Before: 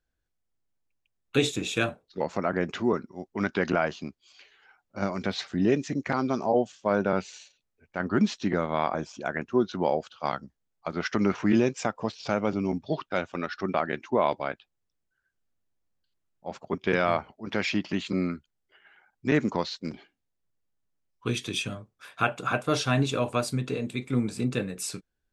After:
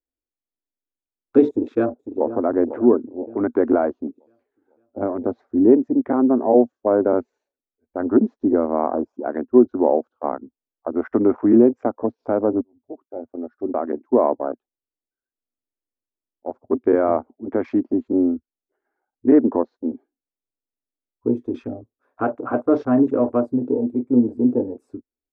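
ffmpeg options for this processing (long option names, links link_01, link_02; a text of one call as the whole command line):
ffmpeg -i in.wav -filter_complex "[0:a]asplit=2[link_01][link_02];[link_02]afade=type=in:start_time=1.49:duration=0.01,afade=type=out:start_time=2.27:duration=0.01,aecho=0:1:500|1000|1500|2000|2500|3000|3500|4000:0.281838|0.183195|0.119077|0.0773998|0.0503099|0.0327014|0.0212559|0.0138164[link_03];[link_01][link_03]amix=inputs=2:normalize=0,asplit=2[link_04][link_05];[link_04]atrim=end=12.61,asetpts=PTS-STARTPTS,afade=type=out:start_time=12.606:duration=0.004:curve=hsin[link_06];[link_05]atrim=start=12.61,asetpts=PTS-STARTPTS,afade=type=in:duration=1.7[link_07];[link_06][link_07]concat=n=2:v=0:a=1,afwtdn=0.0178,firequalizer=gain_entry='entry(110,0);entry(170,-19);entry(240,13);entry(2800,-24)':delay=0.05:min_phase=1" out.wav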